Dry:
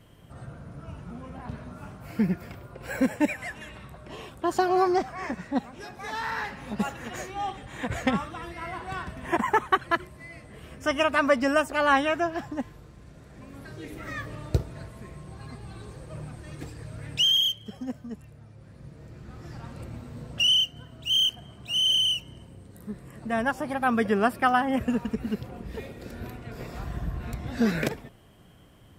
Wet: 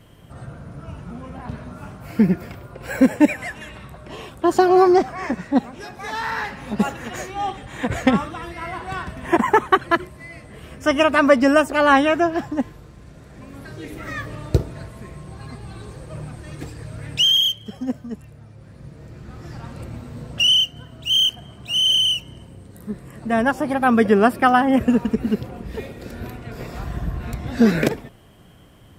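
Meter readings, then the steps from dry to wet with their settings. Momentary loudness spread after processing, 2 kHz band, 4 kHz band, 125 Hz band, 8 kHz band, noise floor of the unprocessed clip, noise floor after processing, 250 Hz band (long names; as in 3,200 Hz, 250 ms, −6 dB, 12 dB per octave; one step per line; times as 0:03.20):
22 LU, +6.0 dB, +5.5 dB, +6.5 dB, +5.5 dB, −50 dBFS, −45 dBFS, +9.5 dB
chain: dynamic equaliser 330 Hz, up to +5 dB, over −36 dBFS, Q 0.83
level +5.5 dB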